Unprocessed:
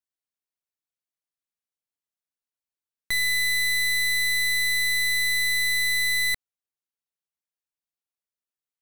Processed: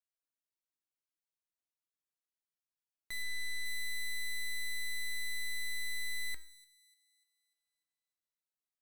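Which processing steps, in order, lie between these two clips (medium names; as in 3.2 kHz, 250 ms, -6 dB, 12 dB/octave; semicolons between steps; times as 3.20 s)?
3.22–3.66 s: treble shelf 5.6 kHz -7.5 dB; hard clipper -31.5 dBFS, distortion -23 dB; feedback comb 320 Hz, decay 0.48 s, harmonics all, mix 80%; on a send: feedback echo behind a high-pass 297 ms, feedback 42%, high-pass 4 kHz, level -18 dB; on the sum: trim +4.5 dB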